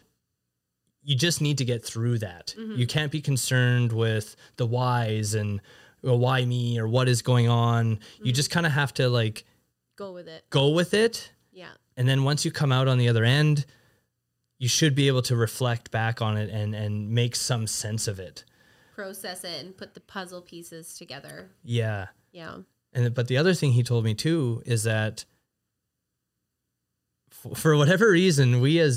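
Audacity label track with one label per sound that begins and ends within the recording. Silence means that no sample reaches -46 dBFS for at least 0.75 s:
1.060000	13.710000	sound
14.600000	25.230000	sound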